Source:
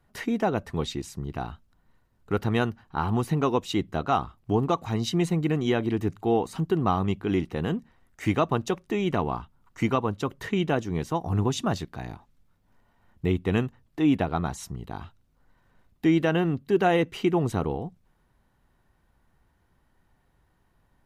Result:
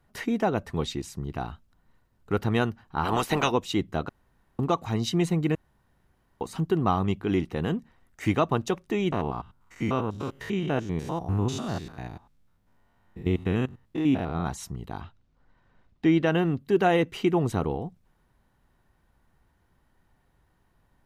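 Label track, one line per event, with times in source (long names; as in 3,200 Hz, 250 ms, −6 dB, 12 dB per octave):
3.040000	3.500000	ceiling on every frequency bin ceiling under each frame's peak by 23 dB
4.090000	4.590000	fill with room tone
5.550000	6.410000	fill with room tone
9.120000	14.470000	spectrum averaged block by block every 100 ms
15.010000	16.270000	low-pass filter 5,200 Hz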